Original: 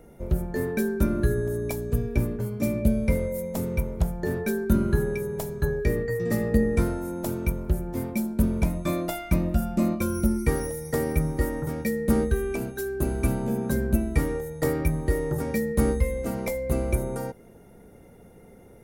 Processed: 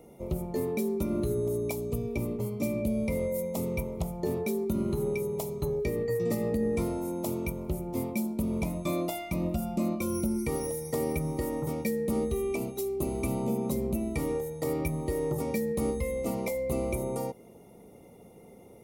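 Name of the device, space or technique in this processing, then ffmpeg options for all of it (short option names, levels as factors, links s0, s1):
PA system with an anti-feedback notch: -af "highpass=f=160:p=1,asuperstop=centerf=1600:order=4:qfactor=2,alimiter=limit=0.1:level=0:latency=1:release=131"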